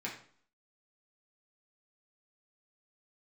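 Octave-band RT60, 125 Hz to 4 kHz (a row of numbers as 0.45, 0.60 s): 0.55, 0.60, 0.50, 0.55, 0.45, 0.45 s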